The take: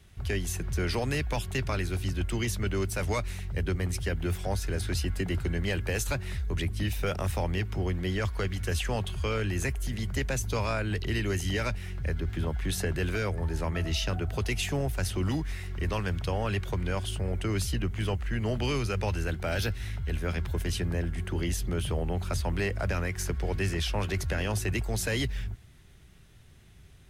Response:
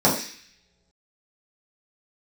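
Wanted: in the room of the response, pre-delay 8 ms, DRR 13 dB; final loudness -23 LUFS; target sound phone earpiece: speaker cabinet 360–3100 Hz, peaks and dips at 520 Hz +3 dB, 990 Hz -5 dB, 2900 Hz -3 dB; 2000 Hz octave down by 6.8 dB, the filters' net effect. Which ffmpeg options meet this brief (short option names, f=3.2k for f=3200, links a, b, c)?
-filter_complex "[0:a]equalizer=f=2k:t=o:g=-7.5,asplit=2[a][b];[1:a]atrim=start_sample=2205,adelay=8[c];[b][c]afir=irnorm=-1:irlink=0,volume=-32dB[d];[a][d]amix=inputs=2:normalize=0,highpass=360,equalizer=f=520:t=q:w=4:g=3,equalizer=f=990:t=q:w=4:g=-5,equalizer=f=2.9k:t=q:w=4:g=-3,lowpass=f=3.1k:w=0.5412,lowpass=f=3.1k:w=1.3066,volume=14.5dB"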